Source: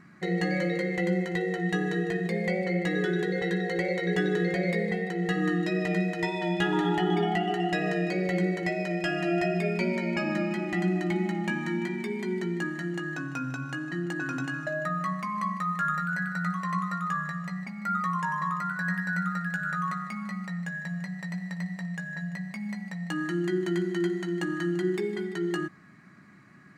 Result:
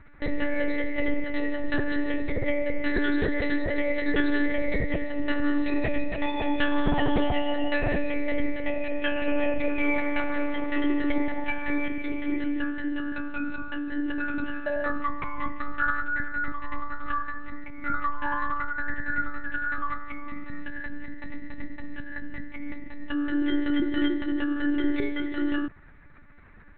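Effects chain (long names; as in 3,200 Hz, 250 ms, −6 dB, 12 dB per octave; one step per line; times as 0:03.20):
0:09.84–0:11.88: comb filter 2.2 ms, depth 92%
one-pitch LPC vocoder at 8 kHz 290 Hz
level +4 dB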